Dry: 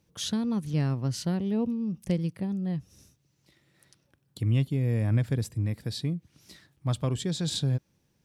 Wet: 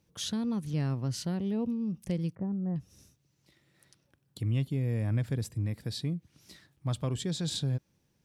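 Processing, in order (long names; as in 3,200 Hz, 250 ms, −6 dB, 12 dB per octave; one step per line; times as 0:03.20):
0:02.35–0:02.76: low-pass filter 1,400 Hz 24 dB per octave
in parallel at +1 dB: brickwall limiter −23.5 dBFS, peak gain reduction 8 dB
on the sum: level −8.5 dB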